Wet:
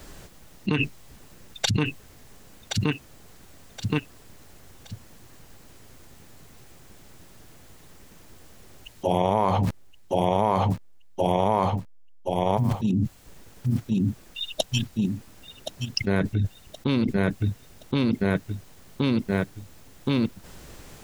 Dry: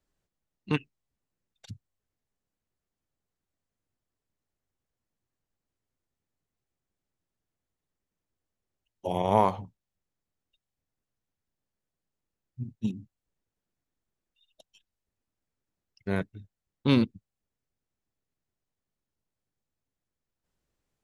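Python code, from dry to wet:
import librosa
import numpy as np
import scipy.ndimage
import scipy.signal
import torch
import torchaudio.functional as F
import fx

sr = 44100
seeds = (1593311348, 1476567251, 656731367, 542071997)

y = fx.delta_hold(x, sr, step_db=-59.0, at=(9.63, 12.73))
y = fx.echo_feedback(y, sr, ms=1072, feedback_pct=34, wet_db=-14)
y = fx.env_flatten(y, sr, amount_pct=100)
y = y * librosa.db_to_amplitude(-3.0)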